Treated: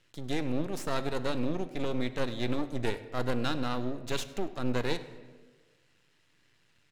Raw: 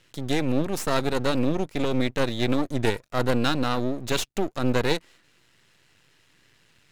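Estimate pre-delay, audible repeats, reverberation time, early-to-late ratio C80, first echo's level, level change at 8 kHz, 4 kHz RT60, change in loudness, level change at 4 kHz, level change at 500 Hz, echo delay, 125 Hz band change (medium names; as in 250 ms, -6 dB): 3 ms, 1, 1.4 s, 14.5 dB, -22.0 dB, -9.5 dB, 0.95 s, -7.5 dB, -8.5 dB, -7.5 dB, 101 ms, -7.5 dB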